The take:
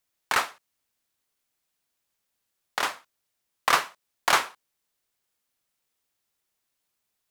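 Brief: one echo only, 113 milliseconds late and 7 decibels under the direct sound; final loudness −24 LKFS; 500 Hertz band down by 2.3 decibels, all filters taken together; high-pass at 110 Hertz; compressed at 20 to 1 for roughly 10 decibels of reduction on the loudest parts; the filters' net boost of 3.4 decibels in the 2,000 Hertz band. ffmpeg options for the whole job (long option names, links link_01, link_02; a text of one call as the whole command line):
ffmpeg -i in.wav -af "highpass=110,equalizer=frequency=500:width_type=o:gain=-3.5,equalizer=frequency=2000:width_type=o:gain=4.5,acompressor=threshold=-24dB:ratio=20,aecho=1:1:113:0.447,volume=8dB" out.wav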